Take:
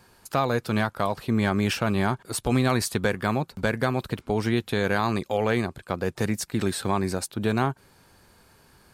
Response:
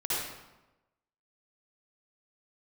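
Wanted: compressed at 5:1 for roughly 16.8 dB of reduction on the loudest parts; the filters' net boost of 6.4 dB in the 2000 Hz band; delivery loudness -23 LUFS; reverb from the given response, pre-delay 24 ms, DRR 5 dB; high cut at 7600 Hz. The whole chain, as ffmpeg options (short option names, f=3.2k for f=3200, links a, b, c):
-filter_complex "[0:a]lowpass=7.6k,equalizer=f=2k:t=o:g=8.5,acompressor=threshold=-36dB:ratio=5,asplit=2[a][b];[1:a]atrim=start_sample=2205,adelay=24[c];[b][c]afir=irnorm=-1:irlink=0,volume=-13dB[d];[a][d]amix=inputs=2:normalize=0,volume=15dB"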